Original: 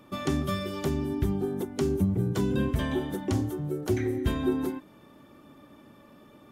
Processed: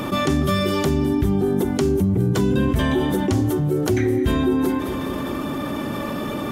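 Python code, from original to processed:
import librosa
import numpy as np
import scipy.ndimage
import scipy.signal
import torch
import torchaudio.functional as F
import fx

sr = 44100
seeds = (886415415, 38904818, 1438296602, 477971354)

p1 = x + fx.echo_feedback(x, sr, ms=208, feedback_pct=60, wet_db=-21.5, dry=0)
p2 = fx.env_flatten(p1, sr, amount_pct=70)
y = F.gain(torch.from_numpy(p2), 4.0).numpy()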